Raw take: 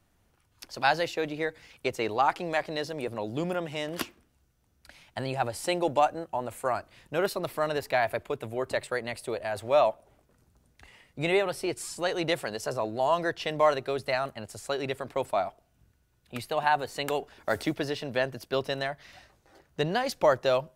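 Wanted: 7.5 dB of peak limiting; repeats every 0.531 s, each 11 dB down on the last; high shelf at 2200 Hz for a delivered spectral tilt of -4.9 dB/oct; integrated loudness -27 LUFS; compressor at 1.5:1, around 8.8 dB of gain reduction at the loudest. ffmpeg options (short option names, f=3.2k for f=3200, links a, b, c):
-af "highshelf=f=2.2k:g=-4,acompressor=threshold=-43dB:ratio=1.5,alimiter=level_in=3dB:limit=-24dB:level=0:latency=1,volume=-3dB,aecho=1:1:531|1062|1593:0.282|0.0789|0.0221,volume=12.5dB"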